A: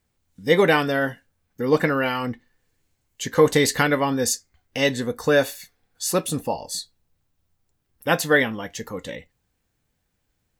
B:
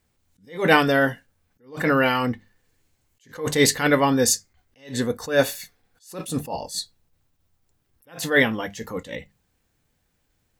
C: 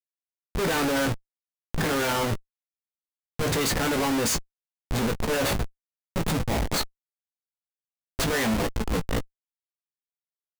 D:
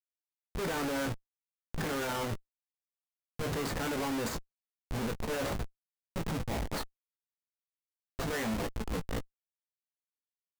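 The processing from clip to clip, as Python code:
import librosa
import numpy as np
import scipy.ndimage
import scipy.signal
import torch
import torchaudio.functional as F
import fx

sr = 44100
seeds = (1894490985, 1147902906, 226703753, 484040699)

y1 = fx.hum_notches(x, sr, base_hz=50, count=4)
y1 = fx.attack_slew(y1, sr, db_per_s=160.0)
y1 = y1 * 10.0 ** (3.5 / 20.0)
y2 = fx.schmitt(y1, sr, flips_db=-28.5)
y2 = fx.doubler(y2, sr, ms=18.0, db=-8.0)
y3 = scipy.signal.medfilt(y2, 15)
y3 = y3 * 10.0 ** (-8.5 / 20.0)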